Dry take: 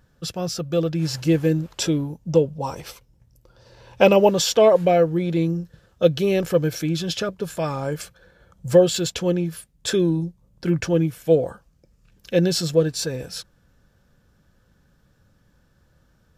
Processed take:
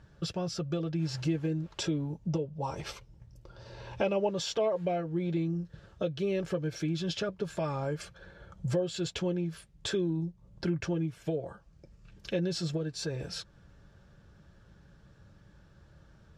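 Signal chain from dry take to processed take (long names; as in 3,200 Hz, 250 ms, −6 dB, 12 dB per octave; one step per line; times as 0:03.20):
downward compressor 3 to 1, threshold −36 dBFS, peak gain reduction 19.5 dB
high-frequency loss of the air 75 metres
notch comb filter 250 Hz
level +4 dB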